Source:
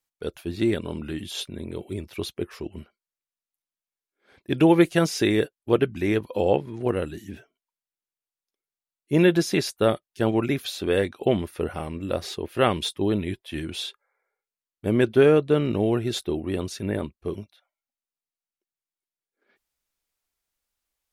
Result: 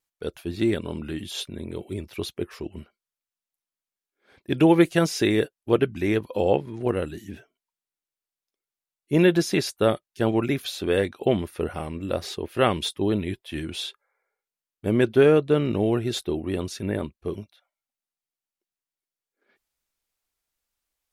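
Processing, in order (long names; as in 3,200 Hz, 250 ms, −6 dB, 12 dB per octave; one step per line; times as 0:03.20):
pitch vibrato 1 Hz 10 cents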